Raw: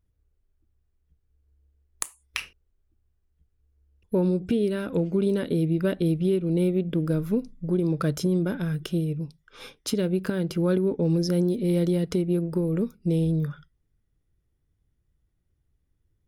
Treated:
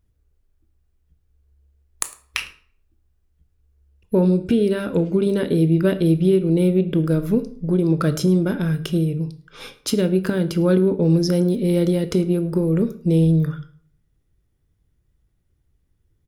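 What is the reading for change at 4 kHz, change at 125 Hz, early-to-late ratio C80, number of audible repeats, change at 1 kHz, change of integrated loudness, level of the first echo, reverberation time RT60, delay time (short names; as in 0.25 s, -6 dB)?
+6.0 dB, +6.5 dB, 18.0 dB, 1, +6.0 dB, +6.0 dB, -22.5 dB, 0.55 s, 0.106 s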